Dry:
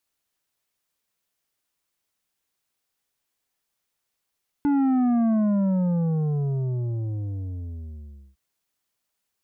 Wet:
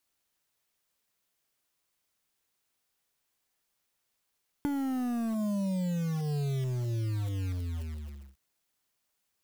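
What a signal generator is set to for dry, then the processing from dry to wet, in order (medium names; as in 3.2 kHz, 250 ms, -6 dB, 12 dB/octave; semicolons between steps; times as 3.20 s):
sub drop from 290 Hz, over 3.71 s, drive 8 dB, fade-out 3.09 s, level -19 dB
block-companded coder 3-bit; compression 12:1, threshold -30 dBFS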